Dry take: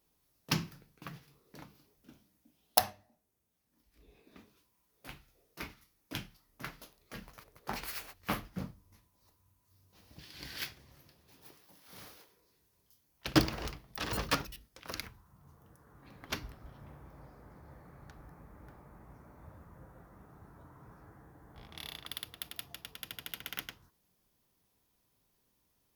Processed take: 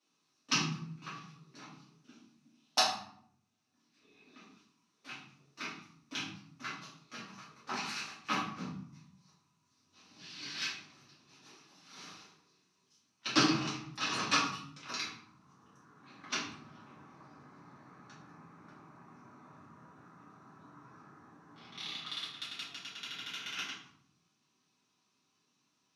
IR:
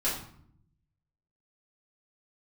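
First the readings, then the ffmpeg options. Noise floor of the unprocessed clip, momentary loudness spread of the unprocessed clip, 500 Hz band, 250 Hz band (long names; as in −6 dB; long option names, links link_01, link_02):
−76 dBFS, 23 LU, −2.5 dB, +0.5 dB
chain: -filter_complex "[0:a]highpass=frequency=150:width=0.5412,highpass=frequency=150:width=1.3066,equalizer=frequency=540:width_type=q:width=4:gain=-10,equalizer=frequency=1200:width_type=q:width=4:gain=8,equalizer=frequency=2600:width_type=q:width=4:gain=8,equalizer=frequency=4000:width_type=q:width=4:gain=7,equalizer=frequency=6000:width_type=q:width=4:gain=9,lowpass=frequency=8000:width=0.5412,lowpass=frequency=8000:width=1.3066[link_01];[1:a]atrim=start_sample=2205[link_02];[link_01][link_02]afir=irnorm=-1:irlink=0,volume=-8dB"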